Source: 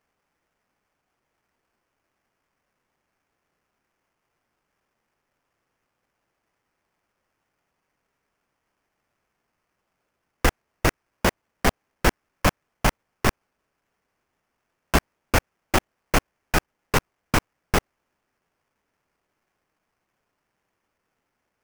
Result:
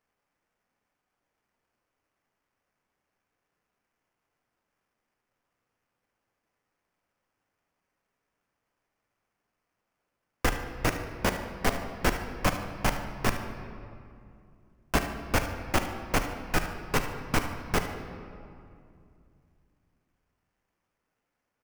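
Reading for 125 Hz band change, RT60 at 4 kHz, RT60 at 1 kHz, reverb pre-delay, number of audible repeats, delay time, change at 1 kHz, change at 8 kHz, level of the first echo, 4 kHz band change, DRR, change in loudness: −5.0 dB, 1.5 s, 2.4 s, 4 ms, 1, 74 ms, −4.5 dB, −5.5 dB, −13.5 dB, −5.0 dB, 5.0 dB, −5.0 dB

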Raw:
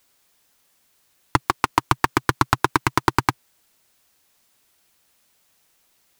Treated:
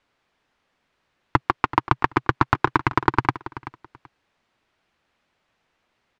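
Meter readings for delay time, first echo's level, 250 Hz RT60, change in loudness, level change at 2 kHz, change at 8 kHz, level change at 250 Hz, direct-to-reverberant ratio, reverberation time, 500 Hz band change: 382 ms, −15.5 dB, no reverb audible, −0.5 dB, −1.0 dB, below −15 dB, 0.0 dB, no reverb audible, no reverb audible, 0.0 dB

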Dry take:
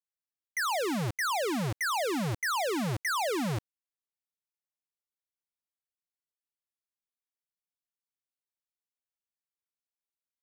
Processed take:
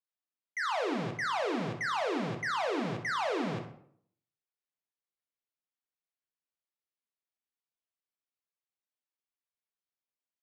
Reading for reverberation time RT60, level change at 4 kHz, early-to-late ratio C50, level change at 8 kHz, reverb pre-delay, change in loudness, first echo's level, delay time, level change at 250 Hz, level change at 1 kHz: 0.65 s, −4.5 dB, 7.0 dB, −12.5 dB, 7 ms, −2.5 dB, −11.5 dB, 63 ms, −2.5 dB, −1.5 dB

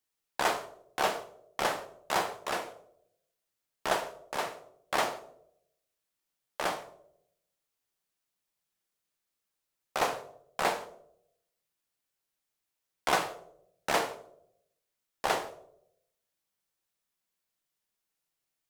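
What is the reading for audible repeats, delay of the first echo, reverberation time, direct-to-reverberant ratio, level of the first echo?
no echo audible, no echo audible, 0.75 s, 7.0 dB, no echo audible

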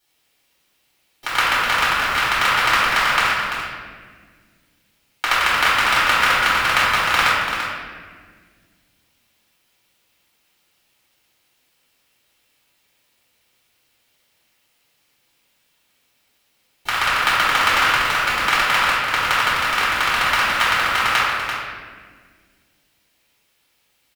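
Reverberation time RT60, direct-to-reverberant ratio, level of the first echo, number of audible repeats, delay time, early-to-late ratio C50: 1.7 s, −10.0 dB, −7.0 dB, 1, 339 ms, −3.0 dB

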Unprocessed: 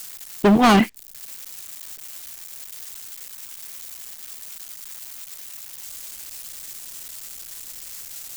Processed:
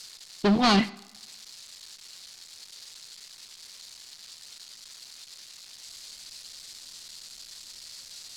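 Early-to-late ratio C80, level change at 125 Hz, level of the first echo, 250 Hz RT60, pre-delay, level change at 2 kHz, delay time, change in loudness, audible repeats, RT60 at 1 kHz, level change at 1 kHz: 21.0 dB, −6.0 dB, no echo audible, 0.95 s, 3 ms, −6.5 dB, no echo audible, −3.0 dB, no echo audible, 1.1 s, −7.5 dB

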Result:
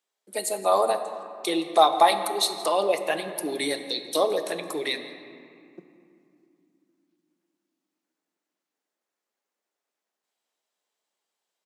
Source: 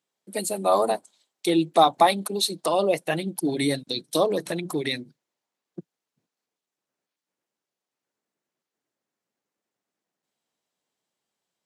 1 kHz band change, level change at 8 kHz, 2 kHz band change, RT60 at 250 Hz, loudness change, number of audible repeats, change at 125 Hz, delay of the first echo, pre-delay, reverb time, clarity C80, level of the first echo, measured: +0.5 dB, +0.5 dB, +0.5 dB, 4.3 s, −0.5 dB, 1, −14.5 dB, 169 ms, 5 ms, 2.7 s, 10.0 dB, −19.5 dB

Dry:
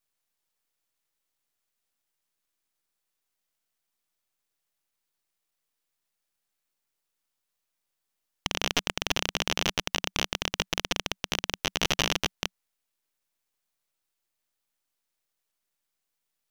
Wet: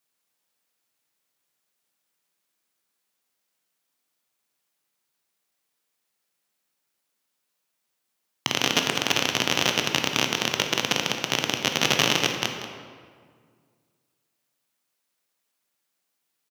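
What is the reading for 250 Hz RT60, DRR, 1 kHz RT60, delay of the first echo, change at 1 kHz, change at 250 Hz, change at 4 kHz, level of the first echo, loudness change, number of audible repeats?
2.1 s, 3.5 dB, 1.8 s, 186 ms, +6.0 dB, +7.0 dB, +5.5 dB, −12.0 dB, +6.0 dB, 1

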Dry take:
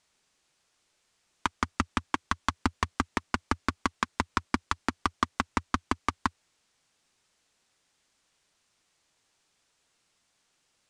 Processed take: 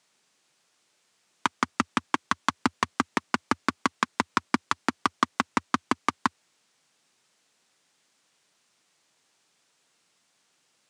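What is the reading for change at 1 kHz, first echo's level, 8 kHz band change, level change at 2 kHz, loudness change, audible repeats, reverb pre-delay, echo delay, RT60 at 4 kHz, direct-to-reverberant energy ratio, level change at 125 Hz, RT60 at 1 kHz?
+3.5 dB, no echo audible, +3.5 dB, +3.5 dB, +3.5 dB, no echo audible, no reverb audible, no echo audible, no reverb audible, no reverb audible, −4.0 dB, no reverb audible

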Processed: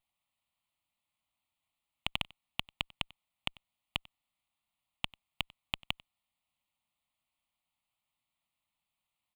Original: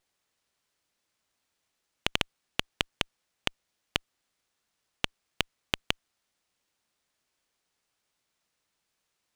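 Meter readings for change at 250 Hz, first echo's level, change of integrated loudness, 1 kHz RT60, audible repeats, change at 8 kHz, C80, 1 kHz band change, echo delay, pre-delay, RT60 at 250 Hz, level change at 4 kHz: −9.0 dB, −23.5 dB, −6.0 dB, no reverb audible, 1, −13.5 dB, no reverb audible, −6.0 dB, 94 ms, no reverb audible, no reverb audible, −5.0 dB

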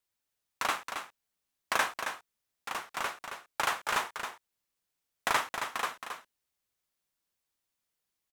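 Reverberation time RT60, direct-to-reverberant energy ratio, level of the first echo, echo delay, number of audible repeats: no reverb audible, no reverb audible, −7.5 dB, 271 ms, 1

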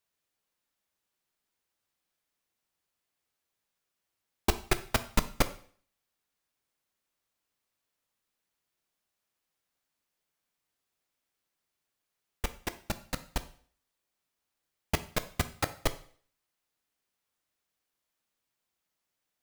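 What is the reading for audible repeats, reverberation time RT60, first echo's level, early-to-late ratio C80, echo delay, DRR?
no echo audible, 0.50 s, no echo audible, 19.0 dB, no echo audible, 10.5 dB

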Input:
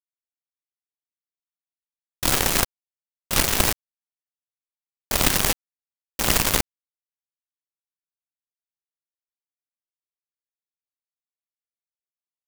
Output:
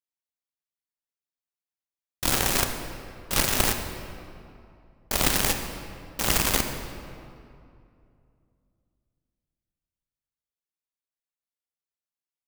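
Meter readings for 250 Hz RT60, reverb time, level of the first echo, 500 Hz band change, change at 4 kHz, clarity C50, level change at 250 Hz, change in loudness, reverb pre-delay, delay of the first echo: 2.9 s, 2.6 s, no echo audible, −2.0 dB, −3.0 dB, 6.5 dB, −2.0 dB, −3.5 dB, 24 ms, no echo audible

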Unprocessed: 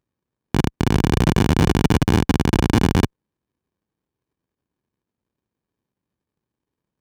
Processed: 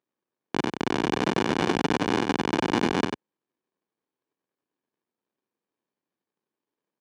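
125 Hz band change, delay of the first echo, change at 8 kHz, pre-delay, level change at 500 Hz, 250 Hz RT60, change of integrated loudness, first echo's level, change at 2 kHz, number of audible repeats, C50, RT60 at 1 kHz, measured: −16.5 dB, 94 ms, −8.0 dB, no reverb audible, −3.0 dB, no reverb audible, −7.0 dB, −6.0 dB, −2.0 dB, 1, no reverb audible, no reverb audible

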